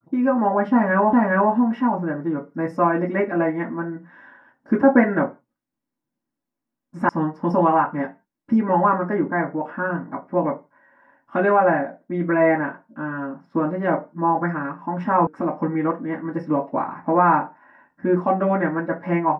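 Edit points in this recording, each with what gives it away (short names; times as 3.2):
1.13 repeat of the last 0.41 s
7.09 sound cut off
15.27 sound cut off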